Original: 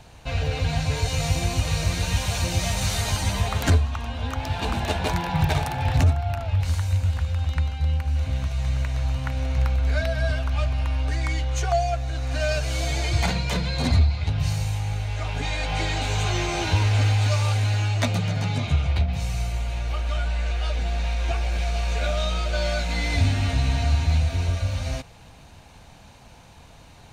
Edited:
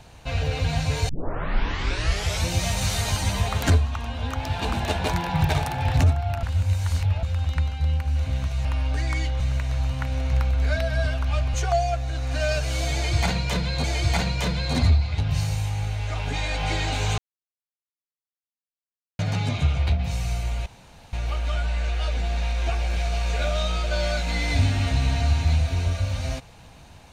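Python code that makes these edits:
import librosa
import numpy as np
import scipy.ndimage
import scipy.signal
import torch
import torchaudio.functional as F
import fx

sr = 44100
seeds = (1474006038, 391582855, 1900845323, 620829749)

y = fx.edit(x, sr, fx.tape_start(start_s=1.09, length_s=1.4),
    fx.reverse_span(start_s=6.43, length_s=0.8),
    fx.move(start_s=10.79, length_s=0.75, to_s=8.65),
    fx.repeat(start_s=12.93, length_s=0.91, count=2),
    fx.silence(start_s=16.27, length_s=2.01),
    fx.insert_room_tone(at_s=19.75, length_s=0.47), tone=tone)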